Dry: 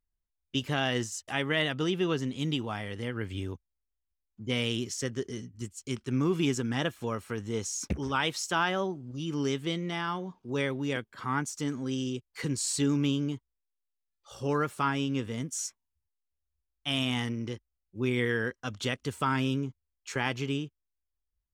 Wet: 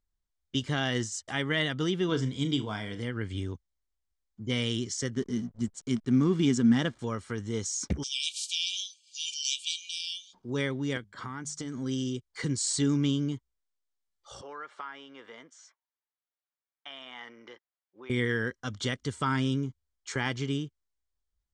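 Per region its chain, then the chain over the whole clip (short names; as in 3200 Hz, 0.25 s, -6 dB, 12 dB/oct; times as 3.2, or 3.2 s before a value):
2.08–3.01 ripple EQ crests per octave 1.7, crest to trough 7 dB + flutter echo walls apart 6.3 m, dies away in 0.21 s
5.15–6.99 bell 230 Hz +12 dB 0.32 oct + backlash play -44.5 dBFS
8.02–10.33 spectral limiter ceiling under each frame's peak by 25 dB + brick-wall FIR high-pass 2300 Hz + mismatched tape noise reduction encoder only
10.97–11.78 compressor, threshold -33 dBFS + notches 50/100/150/200 Hz
14.41–18.1 tilt +1.5 dB/oct + compressor 3:1, threshold -36 dBFS + BPF 600–2300 Hz
whole clip: steep low-pass 8800 Hz 36 dB/oct; notch 2600 Hz, Q 5; dynamic EQ 710 Hz, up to -5 dB, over -44 dBFS, Q 0.75; gain +2 dB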